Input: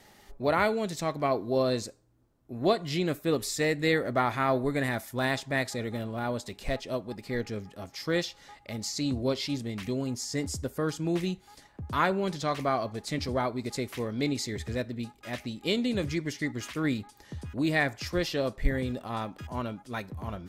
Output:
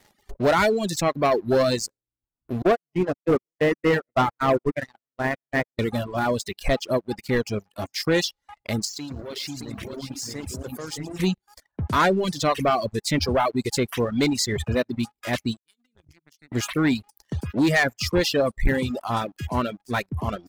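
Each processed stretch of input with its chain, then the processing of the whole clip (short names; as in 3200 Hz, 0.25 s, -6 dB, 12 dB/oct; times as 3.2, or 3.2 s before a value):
2.62–5.79 regenerating reverse delay 0.196 s, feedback 65%, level -13 dB + gate -27 dBFS, range -34 dB + running mean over 11 samples
8.85–11.2 echo 0.621 s -6 dB + level quantiser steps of 21 dB + lo-fi delay 0.113 s, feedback 35%, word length 11-bit, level -7 dB
15.57–16.52 passive tone stack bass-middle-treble 6-0-2 + compressor 5:1, threshold -50 dBFS + three-band expander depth 100%
whole clip: reverb removal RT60 0.72 s; sample leveller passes 3; reverb removal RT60 0.9 s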